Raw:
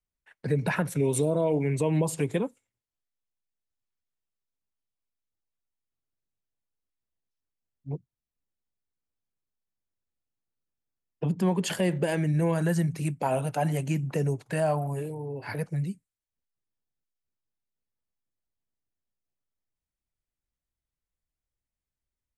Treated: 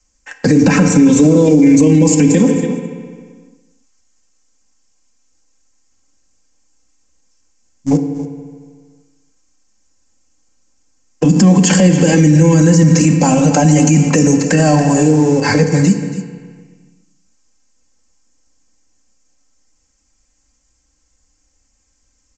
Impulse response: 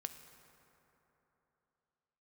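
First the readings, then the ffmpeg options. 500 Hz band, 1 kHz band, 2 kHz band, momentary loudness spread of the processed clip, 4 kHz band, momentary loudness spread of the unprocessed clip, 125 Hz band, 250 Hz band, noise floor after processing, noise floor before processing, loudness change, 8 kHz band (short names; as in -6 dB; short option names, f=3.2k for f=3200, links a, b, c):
+13.5 dB, +13.5 dB, +15.5 dB, 11 LU, +17.0 dB, 10 LU, +16.0 dB, +21.0 dB, -62 dBFS, under -85 dBFS, +17.0 dB, +21.5 dB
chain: -filter_complex "[0:a]acrossover=split=2800[a][b];[b]acompressor=threshold=-48dB:ratio=4:attack=1:release=60[c];[a][c]amix=inputs=2:normalize=0,highshelf=f=6k:g=-10.5,aecho=1:1:3.8:0.83,acrossover=split=280|3000[d][e][f];[e]acompressor=threshold=-42dB:ratio=3[g];[d][g][f]amix=inputs=3:normalize=0,asplit=2[h][i];[i]aeval=exprs='val(0)*gte(abs(val(0)),0.00794)':c=same,volume=-12dB[j];[h][j]amix=inputs=2:normalize=0,aexciter=amount=8.1:drive=8.4:freq=5.6k,aecho=1:1:281:0.188[k];[1:a]atrim=start_sample=2205,asetrate=83790,aresample=44100[l];[k][l]afir=irnorm=-1:irlink=0,aresample=16000,aresample=44100,alimiter=level_in=33dB:limit=-1dB:release=50:level=0:latency=1,volume=-1dB"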